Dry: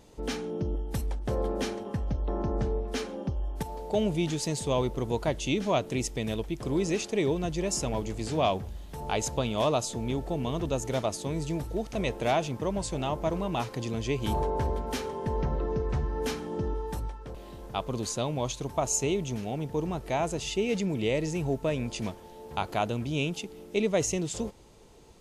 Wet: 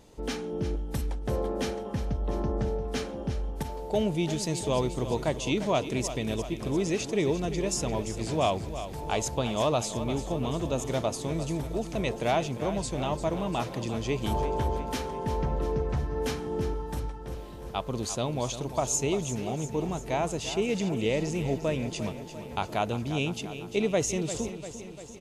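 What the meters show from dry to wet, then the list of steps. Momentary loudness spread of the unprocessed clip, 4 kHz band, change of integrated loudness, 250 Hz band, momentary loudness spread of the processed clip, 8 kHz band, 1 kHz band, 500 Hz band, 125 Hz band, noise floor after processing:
7 LU, +0.5 dB, +0.5 dB, +0.5 dB, 7 LU, +0.5 dB, +0.5 dB, +0.5 dB, +0.5 dB, −41 dBFS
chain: repeating echo 347 ms, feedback 60%, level −11.5 dB

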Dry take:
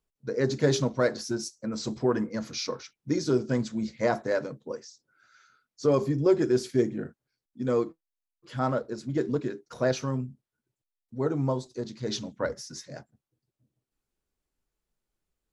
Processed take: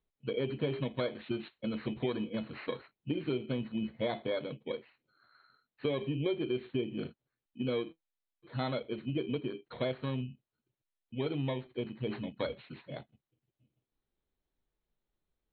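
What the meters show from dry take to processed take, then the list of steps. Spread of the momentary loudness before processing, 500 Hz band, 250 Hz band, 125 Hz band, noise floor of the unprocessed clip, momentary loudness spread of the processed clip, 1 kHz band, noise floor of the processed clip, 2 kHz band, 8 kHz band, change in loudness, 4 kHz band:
15 LU, −8.5 dB, −6.5 dB, −6.5 dB, below −85 dBFS, 9 LU, −9.0 dB, below −85 dBFS, −7.0 dB, below −40 dB, −8.0 dB, −5.0 dB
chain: samples in bit-reversed order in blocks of 16 samples
Chebyshev low-pass filter 4,200 Hz, order 10
downward compressor 4 to 1, threshold −31 dBFS, peak gain reduction 12 dB

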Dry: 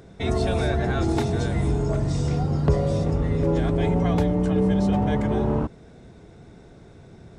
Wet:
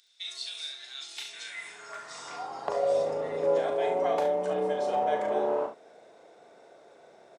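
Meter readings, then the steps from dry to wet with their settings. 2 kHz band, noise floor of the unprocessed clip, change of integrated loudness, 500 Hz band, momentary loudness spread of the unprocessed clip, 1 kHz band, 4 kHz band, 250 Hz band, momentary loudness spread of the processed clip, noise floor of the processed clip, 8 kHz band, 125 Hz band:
−5.5 dB, −48 dBFS, −7.0 dB, −1.5 dB, 3 LU, 0.0 dB, +1.0 dB, −19.5 dB, 13 LU, −56 dBFS, can't be measured, −30.0 dB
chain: high-pass filter sweep 3,700 Hz → 590 Hz, 0:00.95–0:02.94
on a send: ambience of single reflections 38 ms −6 dB, 70 ms −10 dB
on the sum: level −5.5 dB

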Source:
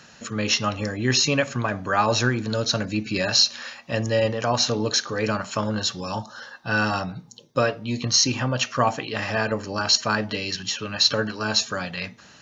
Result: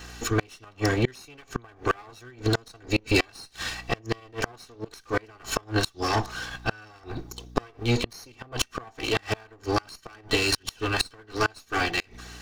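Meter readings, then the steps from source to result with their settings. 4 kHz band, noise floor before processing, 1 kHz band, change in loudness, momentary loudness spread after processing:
−9.0 dB, −50 dBFS, −5.0 dB, −5.5 dB, 15 LU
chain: lower of the sound and its delayed copy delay 2.6 ms
mains hum 60 Hz, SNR 26 dB
gate with flip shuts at −16 dBFS, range −31 dB
level +6 dB

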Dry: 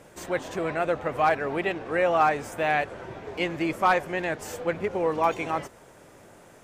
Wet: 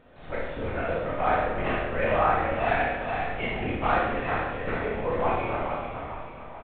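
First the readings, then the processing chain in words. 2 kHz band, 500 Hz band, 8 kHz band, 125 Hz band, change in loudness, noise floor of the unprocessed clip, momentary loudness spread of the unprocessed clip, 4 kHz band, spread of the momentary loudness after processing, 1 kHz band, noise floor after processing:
−0.5 dB, −1.0 dB, below −35 dB, +4.5 dB, −1.0 dB, −52 dBFS, 9 LU, −2.0 dB, 11 LU, −0.5 dB, −42 dBFS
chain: on a send: repeating echo 432 ms, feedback 45%, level −6 dB
on the sum: linear-prediction vocoder at 8 kHz whisper
four-comb reverb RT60 1 s, combs from 25 ms, DRR −4 dB
level −7 dB

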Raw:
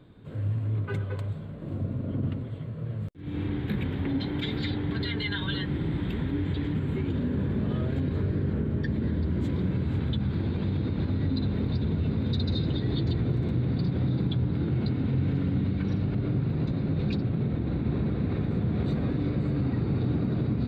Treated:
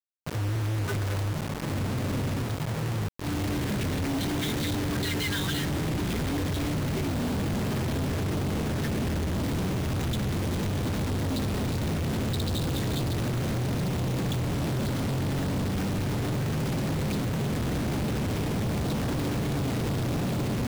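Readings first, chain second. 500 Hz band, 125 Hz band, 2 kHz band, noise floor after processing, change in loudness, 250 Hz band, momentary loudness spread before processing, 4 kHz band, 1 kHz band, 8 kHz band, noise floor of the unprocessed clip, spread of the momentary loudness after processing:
+3.0 dB, −1.0 dB, +5.0 dB, −30 dBFS, 0.0 dB, −1.0 dB, 5 LU, +4.5 dB, +9.0 dB, can't be measured, −36 dBFS, 1 LU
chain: dead-zone distortion −55.5 dBFS
log-companded quantiser 2 bits
level −2 dB

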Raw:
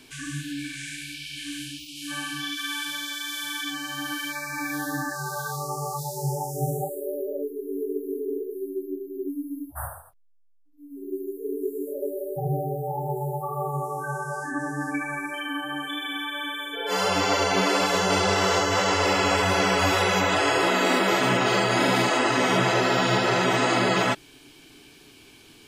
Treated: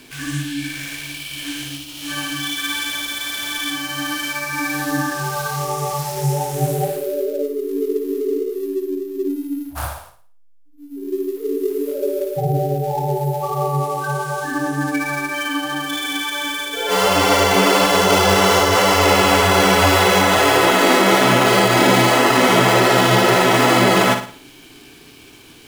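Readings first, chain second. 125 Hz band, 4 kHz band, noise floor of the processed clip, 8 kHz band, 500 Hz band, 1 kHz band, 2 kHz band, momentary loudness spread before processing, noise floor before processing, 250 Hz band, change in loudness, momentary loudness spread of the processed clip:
+8.5 dB, +8.0 dB, −44 dBFS, +8.5 dB, +8.5 dB, +8.0 dB, +7.0 dB, 13 LU, −52 dBFS, +8.0 dB, +8.0 dB, 13 LU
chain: gap after every zero crossing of 0.06 ms
flutter between parallel walls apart 9.7 metres, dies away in 0.44 s
level +7.5 dB

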